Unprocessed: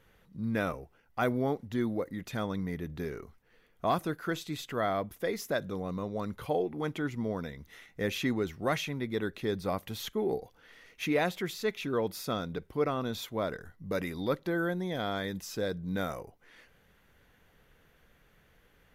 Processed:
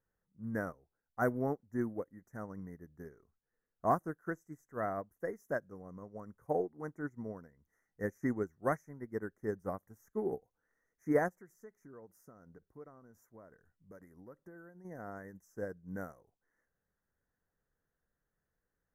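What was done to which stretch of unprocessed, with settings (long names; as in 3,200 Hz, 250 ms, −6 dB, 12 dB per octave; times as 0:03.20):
0:11.28–0:14.85: downward compressor 4 to 1, threshold −34 dBFS
whole clip: elliptic band-stop filter 1,800–6,000 Hz, stop band 40 dB; expander for the loud parts 2.5 to 1, over −41 dBFS; level +1.5 dB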